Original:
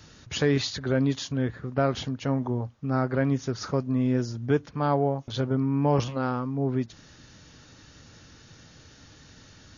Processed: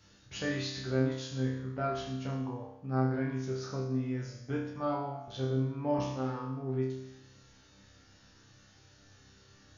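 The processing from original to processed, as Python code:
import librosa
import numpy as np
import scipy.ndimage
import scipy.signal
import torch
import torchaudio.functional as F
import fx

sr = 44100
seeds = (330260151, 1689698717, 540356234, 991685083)

y = fx.resonator_bank(x, sr, root=36, chord='fifth', decay_s=0.85)
y = F.gain(torch.from_numpy(y), 7.0).numpy()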